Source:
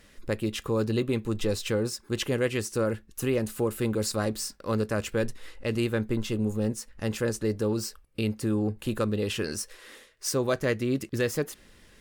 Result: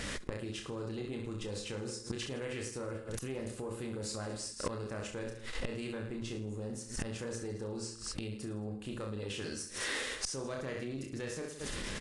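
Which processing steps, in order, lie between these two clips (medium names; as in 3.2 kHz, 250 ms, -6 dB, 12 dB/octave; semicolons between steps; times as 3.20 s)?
reverse bouncing-ball echo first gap 30 ms, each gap 1.2×, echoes 5; inverted gate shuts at -26 dBFS, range -28 dB; valve stage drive 39 dB, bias 0.55; in parallel at +1.5 dB: compressor with a negative ratio -59 dBFS, ratio -1; on the sum: trim +11 dB; Vorbis 48 kbps 22.05 kHz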